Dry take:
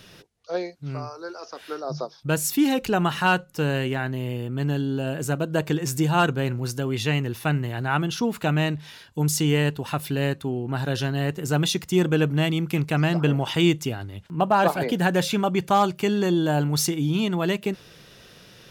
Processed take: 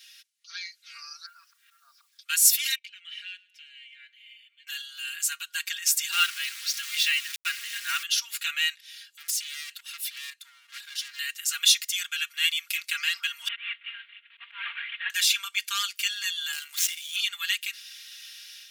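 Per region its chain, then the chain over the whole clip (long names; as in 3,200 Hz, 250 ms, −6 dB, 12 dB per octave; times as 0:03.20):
0:01.26–0:02.19: low-pass filter 1,200 Hz + volume swells 288 ms + bit-depth reduction 12 bits, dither none
0:02.75–0:04.67: formant filter i + downward compressor 10 to 1, threshold −36 dBFS + repeating echo 111 ms, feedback 48%, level −22 dB
0:06.12–0:08.03: Butterworth low-pass 6,000 Hz + low-shelf EQ 310 Hz +9.5 dB + centre clipping without the shift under −29.5 dBFS
0:08.80–0:11.19: shaped tremolo saw up 2 Hz, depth 75% + gain into a clipping stage and back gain 32 dB
0:13.48–0:15.10: variable-slope delta modulation 16 kbit/s + volume swells 149 ms
0:16.52–0:17.16: running median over 9 samples + high-shelf EQ 3,800 Hz +7.5 dB + amplitude modulation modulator 90 Hz, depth 50%
whole clip: Bessel high-pass filter 2,900 Hz, order 8; comb filter 4.3 ms, depth 91%; automatic gain control gain up to 7 dB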